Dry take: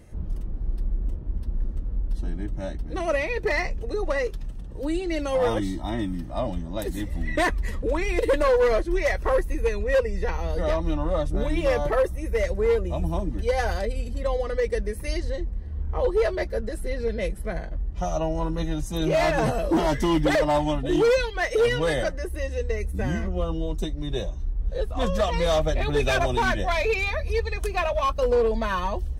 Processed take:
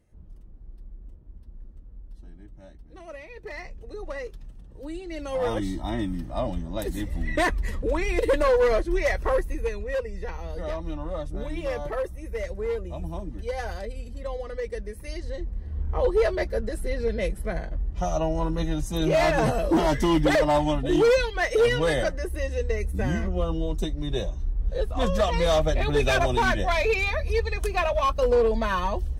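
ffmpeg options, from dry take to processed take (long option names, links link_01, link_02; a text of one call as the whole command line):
ffmpeg -i in.wav -af "volume=7dB,afade=type=in:start_time=3.26:duration=0.84:silence=0.421697,afade=type=in:start_time=5.09:duration=0.68:silence=0.375837,afade=type=out:start_time=9.19:duration=0.73:silence=0.473151,afade=type=in:start_time=15.15:duration=0.63:silence=0.421697" out.wav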